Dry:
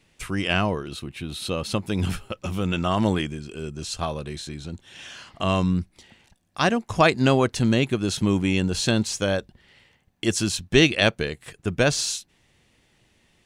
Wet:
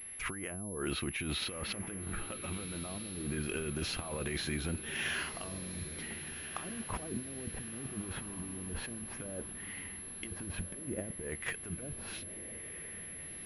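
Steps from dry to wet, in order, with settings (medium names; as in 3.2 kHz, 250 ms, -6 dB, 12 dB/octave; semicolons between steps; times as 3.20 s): low-pass that closes with the level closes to 320 Hz, closed at -17.5 dBFS; ten-band graphic EQ 125 Hz -6 dB, 2 kHz +9 dB, 4 kHz -4 dB; compressor with a negative ratio -36 dBFS, ratio -1; on a send: echo that smears into a reverb 1447 ms, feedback 53%, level -10.5 dB; on the sum: class-D stage that switches slowly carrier 11 kHz; trim -5 dB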